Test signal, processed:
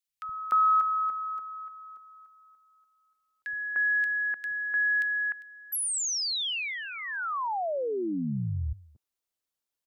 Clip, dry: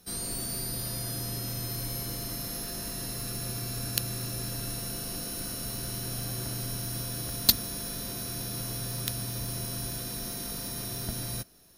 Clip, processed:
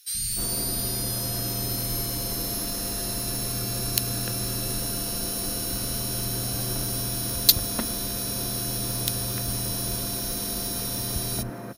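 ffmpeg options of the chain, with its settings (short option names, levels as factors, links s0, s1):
-filter_complex "[0:a]acrossover=split=160|1900[s0][s1][s2];[s0]adelay=70[s3];[s1]adelay=300[s4];[s3][s4][s2]amix=inputs=3:normalize=0,acontrast=78"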